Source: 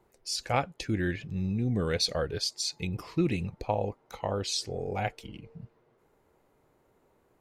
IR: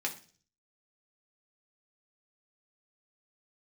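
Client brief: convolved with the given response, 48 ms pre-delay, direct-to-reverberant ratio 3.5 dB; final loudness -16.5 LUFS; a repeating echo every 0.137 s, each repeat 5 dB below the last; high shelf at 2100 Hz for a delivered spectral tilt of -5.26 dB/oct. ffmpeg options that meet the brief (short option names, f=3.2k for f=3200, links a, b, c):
-filter_complex "[0:a]highshelf=f=2.1k:g=-4.5,aecho=1:1:137|274|411|548|685|822|959:0.562|0.315|0.176|0.0988|0.0553|0.031|0.0173,asplit=2[a][b];[1:a]atrim=start_sample=2205,adelay=48[c];[b][c]afir=irnorm=-1:irlink=0,volume=-7.5dB[d];[a][d]amix=inputs=2:normalize=0,volume=13dB"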